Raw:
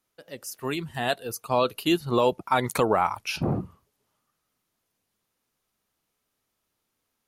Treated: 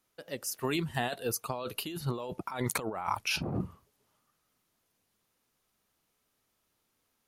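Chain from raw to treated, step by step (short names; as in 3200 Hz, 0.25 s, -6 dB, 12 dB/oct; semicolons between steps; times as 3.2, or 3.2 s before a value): negative-ratio compressor -30 dBFS, ratio -1; gain -3.5 dB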